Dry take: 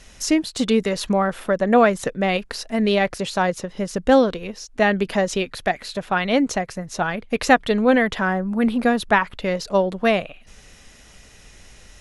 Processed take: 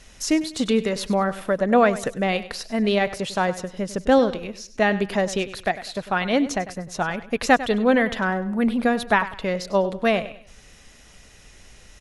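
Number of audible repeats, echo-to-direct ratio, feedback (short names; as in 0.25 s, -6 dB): 3, -14.5 dB, 32%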